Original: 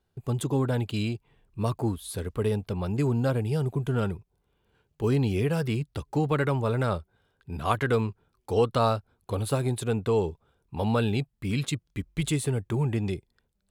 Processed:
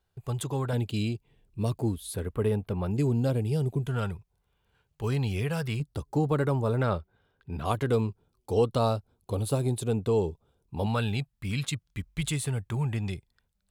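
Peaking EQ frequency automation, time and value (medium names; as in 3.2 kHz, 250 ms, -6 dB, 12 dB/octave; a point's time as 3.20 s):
peaking EQ -9.5 dB 1.4 oct
260 Hz
from 0.73 s 1.2 kHz
from 2.14 s 5.3 kHz
from 2.91 s 1.3 kHz
from 3.87 s 310 Hz
from 5.80 s 2.3 kHz
from 6.77 s 9.4 kHz
from 7.65 s 1.7 kHz
from 10.86 s 350 Hz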